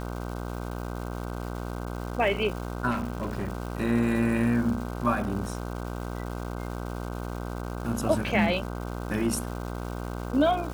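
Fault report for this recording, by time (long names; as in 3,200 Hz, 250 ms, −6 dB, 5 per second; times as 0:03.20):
mains buzz 60 Hz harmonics 26 −34 dBFS
surface crackle 540 per second −37 dBFS
0:02.90–0:03.50: clipping −25 dBFS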